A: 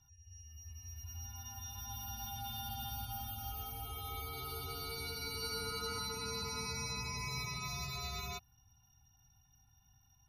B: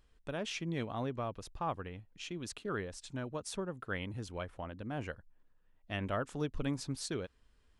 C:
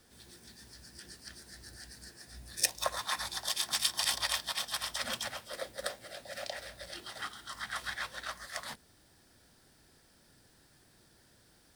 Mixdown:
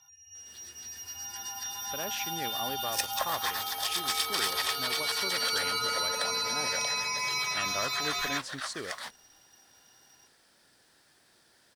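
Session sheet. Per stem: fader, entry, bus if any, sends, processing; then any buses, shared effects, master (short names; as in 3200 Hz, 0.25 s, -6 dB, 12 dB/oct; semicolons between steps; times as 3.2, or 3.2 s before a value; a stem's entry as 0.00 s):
0.0 dB, 0.00 s, no send, HPF 350 Hz 6 dB/oct
-8.5 dB, 1.65 s, no send, dry
-9.0 dB, 0.35 s, no send, dry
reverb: off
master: overdrive pedal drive 18 dB, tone 6700 Hz, clips at -13.5 dBFS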